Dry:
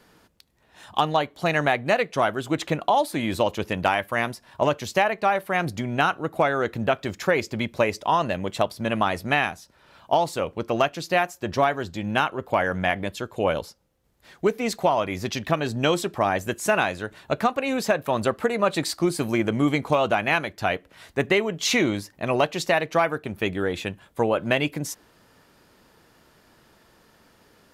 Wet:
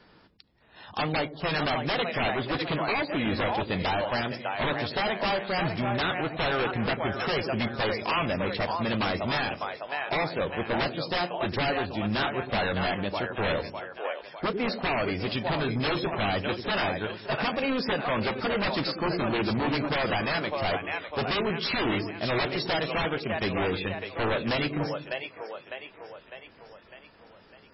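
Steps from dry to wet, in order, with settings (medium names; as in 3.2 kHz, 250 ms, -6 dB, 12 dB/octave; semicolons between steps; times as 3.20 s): two-band feedback delay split 420 Hz, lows 95 ms, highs 603 ms, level -10 dB; wavefolder -21 dBFS; MP3 16 kbps 16 kHz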